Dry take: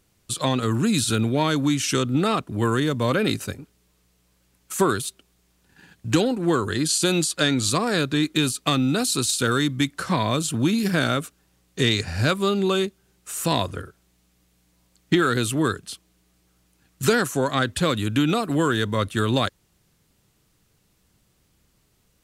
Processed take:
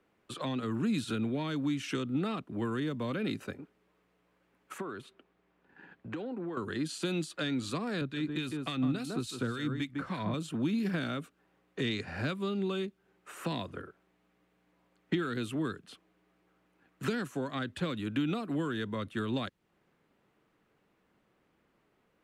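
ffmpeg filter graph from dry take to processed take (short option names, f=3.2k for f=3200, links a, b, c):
-filter_complex "[0:a]asettb=1/sr,asplit=3[a][b][c];[a]atrim=end=4.784[d];[b]atrim=start=4.78:end=6.57,asetpts=PTS-STARTPTS,afade=t=in:d=0.004:c=qsin,afade=t=out:st=1.786:d=0.004:c=qsin,acompressor=threshold=-29dB:ratio=5:attack=3.2:release=140:knee=1:detection=peak,lowpass=f=3.5k:p=1[e];[c]atrim=start=6.566[f];[d][e]acrossfade=d=0.004:c1=hsin:c2=qsin[g];[g][f]acrossfade=d=0.004:c1=qsin:c2=hsin,asettb=1/sr,asplit=3[h][i][j];[h]atrim=end=8.014[k];[i]atrim=start=8.01:end=10.34,asetpts=PTS-STARTPTS,afade=t=in:d=0.004:c=qsin,afade=t=out:st=2.326:d=0.004:c=qsin,lowshelf=f=110:g=12,aecho=1:1:154:0.376,atrim=end_sample=102753,acrossover=split=1700[l][m];[l]aeval=exprs='val(0)*(1-0.7/2+0.7/2*cos(2*PI*3.5*n/s))':c=same[n];[m]aeval=exprs='val(0)*(1-0.7/2-0.7/2*cos(2*PI*3.5*n/s))':c=same[o];[n][o]amix=inputs=2:normalize=0[p];[j]atrim=start=10.336[q];[k][p]acrossfade=d=0.004:c1=hsin:c2=qsin[r];[r][q]acrossfade=d=0.004:c1=qsin:c2=hsin,acrossover=split=210 2500:gain=0.126 1 0.0708[s][t][u];[s][t][u]amix=inputs=3:normalize=0,acrossover=split=220|3000[v][w][x];[w]acompressor=threshold=-38dB:ratio=6[y];[v][y][x]amix=inputs=3:normalize=0"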